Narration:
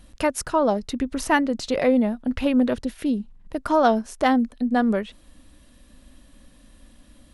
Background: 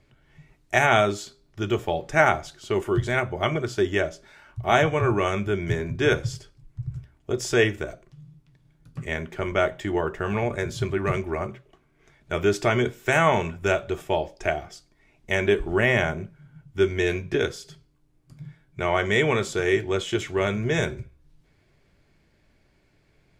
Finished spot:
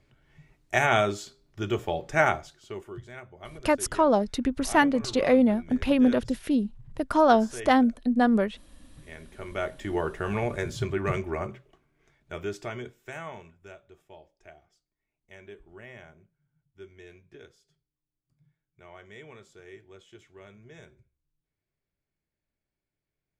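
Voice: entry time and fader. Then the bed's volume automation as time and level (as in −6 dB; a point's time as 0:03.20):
3.45 s, −1.0 dB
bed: 0:02.27 −3.5 dB
0:03.05 −19.5 dB
0:08.91 −19.5 dB
0:09.99 −3 dB
0:11.63 −3 dB
0:13.79 −25.5 dB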